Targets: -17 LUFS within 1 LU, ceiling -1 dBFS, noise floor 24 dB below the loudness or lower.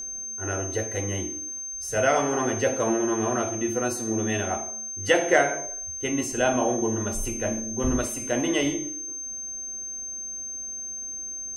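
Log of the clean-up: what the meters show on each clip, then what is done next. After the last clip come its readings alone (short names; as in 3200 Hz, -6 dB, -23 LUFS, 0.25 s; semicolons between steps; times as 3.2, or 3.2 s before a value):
ticks 52/s; steady tone 6300 Hz; tone level -32 dBFS; loudness -26.5 LUFS; peak -6.0 dBFS; loudness target -17.0 LUFS
-> de-click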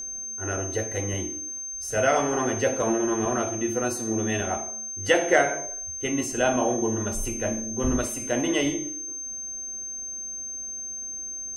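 ticks 0.17/s; steady tone 6300 Hz; tone level -32 dBFS
-> notch 6300 Hz, Q 30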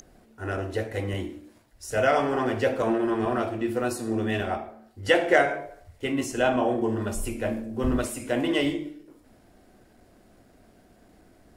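steady tone none; loudness -26.5 LUFS; peak -6.5 dBFS; loudness target -17.0 LUFS
-> gain +9.5 dB; limiter -1 dBFS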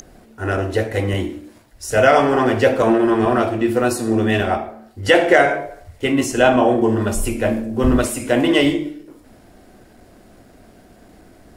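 loudness -17.5 LUFS; peak -1.0 dBFS; noise floor -48 dBFS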